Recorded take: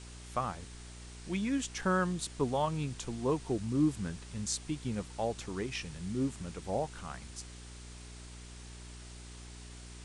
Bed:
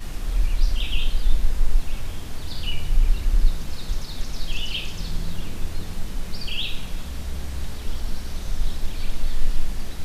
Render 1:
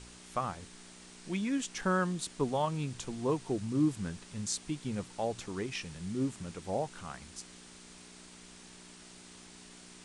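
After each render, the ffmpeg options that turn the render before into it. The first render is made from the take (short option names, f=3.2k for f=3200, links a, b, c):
-af "bandreject=f=60:t=h:w=4,bandreject=f=120:t=h:w=4"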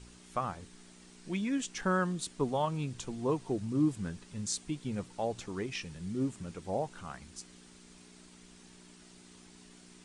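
-af "afftdn=nr=6:nf=-53"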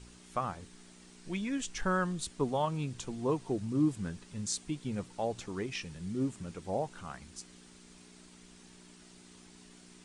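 -filter_complex "[0:a]asplit=3[a][b][c];[a]afade=t=out:st=1.26:d=0.02[d];[b]asubboost=boost=7.5:cutoff=95,afade=t=in:st=1.26:d=0.02,afade=t=out:st=2.29:d=0.02[e];[c]afade=t=in:st=2.29:d=0.02[f];[d][e][f]amix=inputs=3:normalize=0"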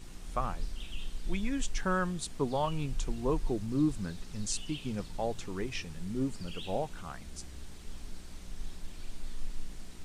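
-filter_complex "[1:a]volume=-17dB[a];[0:a][a]amix=inputs=2:normalize=0"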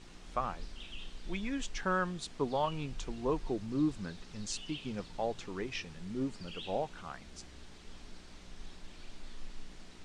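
-af "lowpass=5.6k,lowshelf=f=170:g=-9"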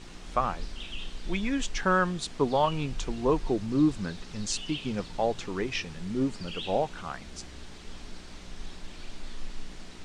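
-af "volume=7.5dB"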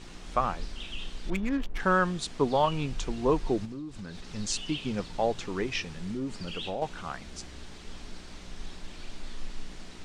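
-filter_complex "[0:a]asettb=1/sr,asplit=3[a][b][c];[a]atrim=end=1.304[d];[b]atrim=start=1.3:end=1.8,asetpts=PTS-STARTPTS,afade=t=in:d=0.004:c=qsin,afade=t=out:st=0.496:d=0.004:c=qsin,adynamicsmooth=sensitivity=4:basefreq=610[e];[c]atrim=start=1.796[f];[d][e]acrossfade=d=0.004:c1=hsin:c2=qsin[g];[g][f]acrossfade=d=0.004:c1=qsin:c2=hsin,asettb=1/sr,asplit=3[h][i][j];[h]atrim=end=3.654[k];[i]atrim=start=3.65:end=4.27,asetpts=PTS-STARTPTS,afade=t=in:d=0.004:c=qsin,afade=t=out:st=0.616:d=0.004:c=qsin,acompressor=threshold=-36dB:ratio=8:attack=3.2:release=140:knee=1:detection=peak[l];[j]atrim=start=4.266[m];[k][l]acrossfade=d=0.004:c1=hsin:c2=qsin[n];[n][m]acrossfade=d=0.004:c1=qsin:c2=hsin,asettb=1/sr,asplit=3[o][p][q];[o]atrim=end=5.964[r];[p]atrim=start=5.96:end=6.82,asetpts=PTS-STARTPTS,afade=t=in:d=0.004:c=qsin,afade=t=out:st=0.856:d=0.004:c=qsin,acompressor=threshold=-30dB:ratio=4:attack=3.2:release=140:knee=1:detection=peak[s];[q]atrim=start=6.816[t];[r][s]acrossfade=d=0.004:c1=hsin:c2=qsin[u];[u][t]acrossfade=d=0.004:c1=qsin:c2=hsin"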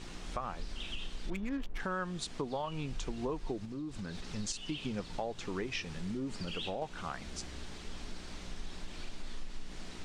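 -af "alimiter=limit=-19.5dB:level=0:latency=1:release=345,acompressor=threshold=-35dB:ratio=3"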